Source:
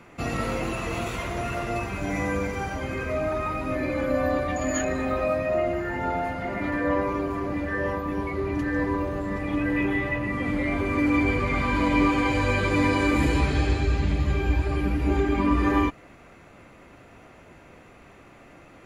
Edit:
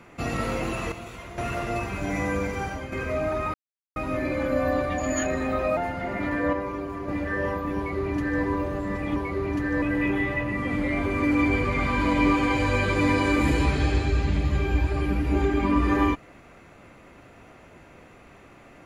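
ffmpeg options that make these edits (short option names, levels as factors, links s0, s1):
-filter_complex "[0:a]asplit=10[s0][s1][s2][s3][s4][s5][s6][s7][s8][s9];[s0]atrim=end=0.922[s10];[s1]atrim=start=0.918:end=1.382,asetpts=PTS-STARTPTS,volume=0.335[s11];[s2]atrim=start=1.378:end=2.92,asetpts=PTS-STARTPTS,afade=t=out:st=1.282:d=0.26:silence=0.421697[s12];[s3]atrim=start=2.92:end=3.54,asetpts=PTS-STARTPTS,afade=t=in:d=0.004:c=hsin:silence=0.421697,afade=t=out:st=0.616:d=0.004:c=hsin,apad=pad_dur=0.42[s13];[s4]atrim=start=3.54:end=5.352,asetpts=PTS-STARTPTS,afade=t=in:d=0.004:c=hsin[s14];[s5]atrim=start=6.178:end=6.942[s15];[s6]atrim=start=6.938:end=7.492,asetpts=PTS-STARTPTS,volume=0.596[s16];[s7]atrim=start=7.488:end=9.572[s17];[s8]atrim=start=8.178:end=8.842[s18];[s9]atrim=start=9.568[s19];[s10][s11]acrossfade=d=0.004:c1=hsin:c2=hsin[s20];[s12][s13][s14]concat=n=3:v=0:a=1[s21];[s20][s21]acrossfade=d=0.004:c1=hsin:c2=hsin[s22];[s22][s15]acrossfade=d=0.004:c1=hsin:c2=hsin[s23];[s23][s16]acrossfade=d=0.004:c1=hsin:c2=hsin[s24];[s24][s17]acrossfade=d=0.004:c1=hsin:c2=hsin[s25];[s25][s18]acrossfade=d=0.004:c1=hsin:c2=hsin[s26];[s26][s19]acrossfade=d=0.004:c1=hsin:c2=hsin"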